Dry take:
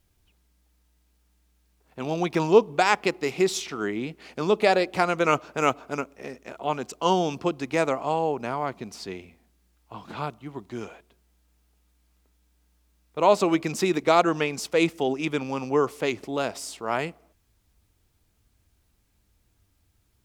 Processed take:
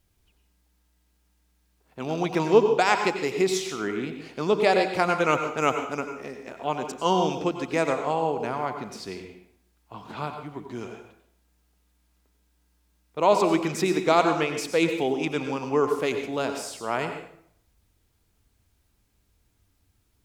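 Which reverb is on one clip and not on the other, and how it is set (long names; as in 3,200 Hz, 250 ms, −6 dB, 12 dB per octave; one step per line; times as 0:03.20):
dense smooth reverb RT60 0.64 s, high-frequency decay 0.8×, pre-delay 80 ms, DRR 6 dB
level −1 dB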